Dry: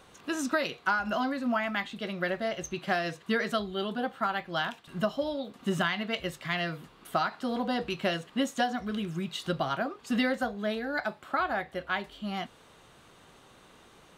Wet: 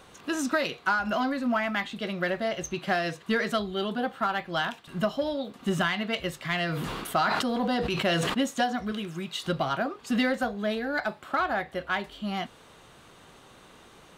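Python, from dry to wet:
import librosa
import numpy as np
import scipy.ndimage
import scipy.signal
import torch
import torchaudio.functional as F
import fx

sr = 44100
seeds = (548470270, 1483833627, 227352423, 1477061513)

p1 = fx.low_shelf(x, sr, hz=200.0, db=-10.5, at=(8.92, 9.43))
p2 = 10.0 ** (-29.0 / 20.0) * np.tanh(p1 / 10.0 ** (-29.0 / 20.0))
p3 = p1 + (p2 * 10.0 ** (-6.0 / 20.0))
y = fx.sustainer(p3, sr, db_per_s=23.0, at=(6.68, 8.33), fade=0.02)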